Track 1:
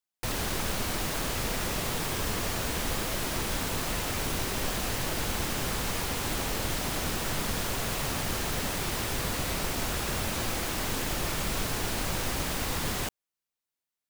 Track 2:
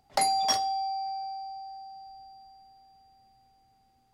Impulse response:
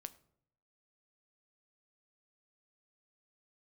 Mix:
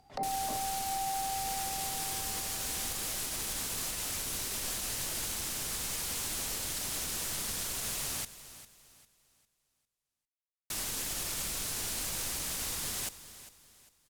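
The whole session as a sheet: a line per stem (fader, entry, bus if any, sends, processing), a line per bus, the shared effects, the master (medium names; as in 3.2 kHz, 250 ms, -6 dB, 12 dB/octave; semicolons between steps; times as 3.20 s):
-12.0 dB, 0.00 s, muted 8.25–10.70 s, no send, echo send -15.5 dB, peaking EQ 9.4 kHz +15 dB 2.6 oct
+2.5 dB, 0.00 s, send -12.5 dB, no echo send, low-pass that closes with the level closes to 510 Hz, closed at -28 dBFS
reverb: on, RT60 0.70 s, pre-delay 7 ms
echo: feedback delay 401 ms, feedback 33%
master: peak limiter -25.5 dBFS, peak gain reduction 13.5 dB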